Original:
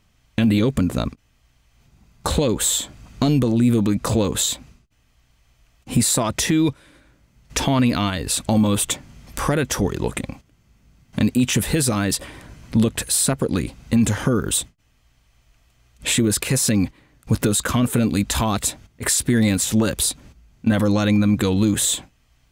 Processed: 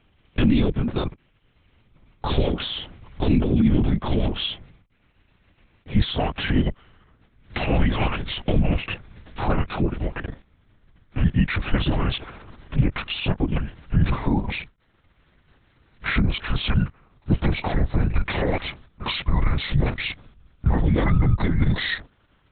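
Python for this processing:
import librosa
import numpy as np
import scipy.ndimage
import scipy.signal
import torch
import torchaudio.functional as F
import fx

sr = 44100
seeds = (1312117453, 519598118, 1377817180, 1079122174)

y = fx.pitch_glide(x, sr, semitones=-11.5, runs='starting unshifted')
y = fx.lpc_vocoder(y, sr, seeds[0], excitation='whisper', order=8)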